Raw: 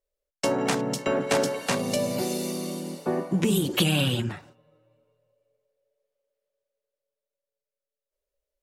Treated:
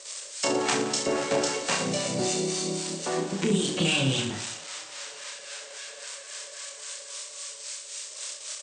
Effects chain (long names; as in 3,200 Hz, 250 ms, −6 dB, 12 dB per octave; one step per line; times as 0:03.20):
spike at every zero crossing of −21.5 dBFS
Butterworth low-pass 8,600 Hz 96 dB per octave
low-shelf EQ 200 Hz −7 dB
in parallel at −1.5 dB: brickwall limiter −20 dBFS, peak gain reduction 10 dB
on the sum: two-band tremolo in antiphase 3.7 Hz, depth 70%, crossover 680 Hz
on a send: reverse bouncing-ball delay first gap 30 ms, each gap 1.25×, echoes 5
on the sum: level −2 dB